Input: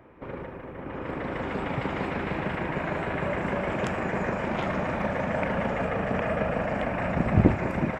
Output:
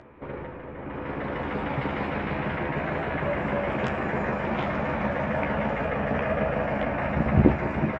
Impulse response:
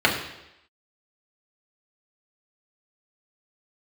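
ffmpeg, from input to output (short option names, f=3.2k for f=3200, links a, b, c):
-filter_complex "[0:a]acompressor=mode=upward:threshold=-47dB:ratio=2.5,lowpass=4.3k,asplit=2[a][b];[b]adelay=14,volume=-5dB[c];[a][c]amix=inputs=2:normalize=0"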